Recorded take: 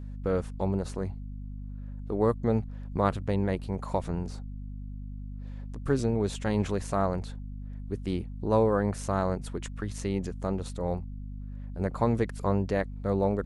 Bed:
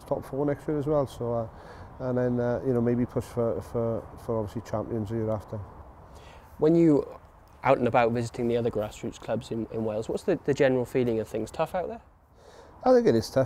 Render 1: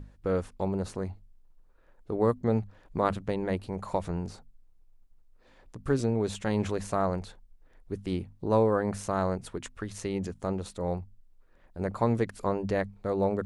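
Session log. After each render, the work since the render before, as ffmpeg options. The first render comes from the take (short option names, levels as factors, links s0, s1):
-af "bandreject=f=50:t=h:w=6,bandreject=f=100:t=h:w=6,bandreject=f=150:t=h:w=6,bandreject=f=200:t=h:w=6,bandreject=f=250:t=h:w=6"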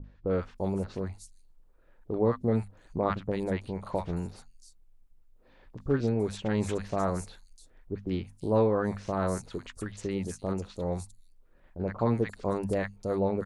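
-filter_complex "[0:a]acrossover=split=930|5100[s0][s1][s2];[s1]adelay=40[s3];[s2]adelay=340[s4];[s0][s3][s4]amix=inputs=3:normalize=0"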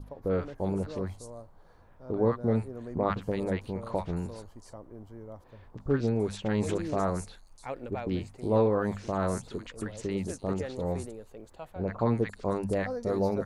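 -filter_complex "[1:a]volume=0.158[s0];[0:a][s0]amix=inputs=2:normalize=0"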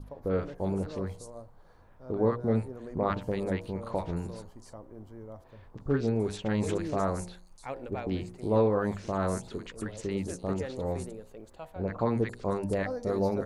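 -af "bandreject=f=59.63:t=h:w=4,bandreject=f=119.26:t=h:w=4,bandreject=f=178.89:t=h:w=4,bandreject=f=238.52:t=h:w=4,bandreject=f=298.15:t=h:w=4,bandreject=f=357.78:t=h:w=4,bandreject=f=417.41:t=h:w=4,bandreject=f=477.04:t=h:w=4,bandreject=f=536.67:t=h:w=4,bandreject=f=596.3:t=h:w=4,bandreject=f=655.93:t=h:w=4,bandreject=f=715.56:t=h:w=4,bandreject=f=775.19:t=h:w=4,bandreject=f=834.82:t=h:w=4,bandreject=f=894.45:t=h:w=4,bandreject=f=954.08:t=h:w=4,bandreject=f=1013.71:t=h:w=4"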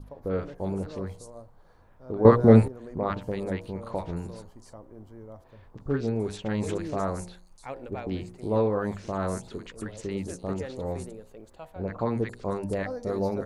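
-filter_complex "[0:a]asplit=3[s0][s1][s2];[s0]atrim=end=2.252[s3];[s1]atrim=start=2.248:end=2.682,asetpts=PTS-STARTPTS,volume=3.98[s4];[s2]atrim=start=2.678[s5];[s3][s4]acrossfade=d=0.004:c1=hsin:c2=hsin[s6];[s6][s5]acrossfade=d=0.004:c1=hsin:c2=hsin"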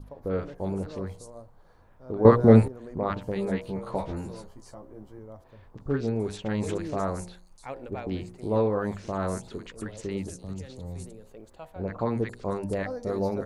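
-filter_complex "[0:a]asettb=1/sr,asplit=3[s0][s1][s2];[s0]atrim=end=3.344[s3];[s1]atrim=start=3.34:end=5.19,asetpts=PTS-STARTPTS,afade=t=in:d=0.004:c=qsin,afade=t=out:st=1.846:d=0.004:c=qsin,asplit=2[s4][s5];[s5]adelay=15,volume=0.708[s6];[s4][s6]amix=inputs=2:normalize=0,atrim=end_sample=81585[s7];[s2]atrim=start=5.186[s8];[s3][s7]acrossfade=d=0.004:c1=hsin:c2=qsin[s9];[s9][s8]acrossfade=d=0.004:c1=qsin:c2=hsin,asettb=1/sr,asplit=3[s10][s11][s12];[s10]atrim=end=10.294[s13];[s11]atrim=start=10.29:end=11.29,asetpts=PTS-STARTPTS,afade=t=in:d=0.004:c=qsin,afade=t=out:st=0.996:d=0.004:c=qsin,acrossover=split=200|3000[s14][s15][s16];[s15]acompressor=threshold=0.00562:ratio=6:attack=3.2:release=140:knee=2.83:detection=peak[s17];[s14][s17][s16]amix=inputs=3:normalize=0[s18];[s12]atrim=start=11.286[s19];[s13][s18]acrossfade=d=0.004:c1=hsin:c2=qsin[s20];[s20][s19]acrossfade=d=0.004:c1=qsin:c2=hsin"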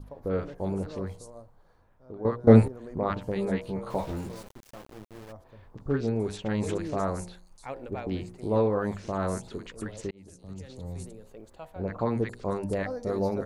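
-filter_complex "[0:a]asplit=3[s0][s1][s2];[s0]afade=t=out:st=3.89:d=0.02[s3];[s1]aeval=exprs='val(0)*gte(abs(val(0)),0.00668)':c=same,afade=t=in:st=3.89:d=0.02,afade=t=out:st=5.31:d=0.02[s4];[s2]afade=t=in:st=5.31:d=0.02[s5];[s3][s4][s5]amix=inputs=3:normalize=0,asplit=3[s6][s7][s8];[s6]atrim=end=2.47,asetpts=PTS-STARTPTS,afade=t=out:st=1.09:d=1.38:silence=0.133352[s9];[s7]atrim=start=2.47:end=10.11,asetpts=PTS-STARTPTS,afade=t=in:d=0.004:c=hsin:silence=0.133352,afade=t=out:st=7.636:d=0.004:c=hsin[s10];[s8]atrim=start=10.11,asetpts=PTS-STARTPTS,afade=t=in:d=0.73[s11];[s9][s10][s11]concat=n=3:v=0:a=1"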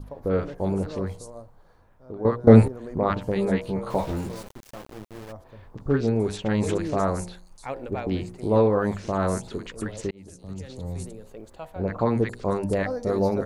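-af "volume=1.78,alimiter=limit=0.891:level=0:latency=1"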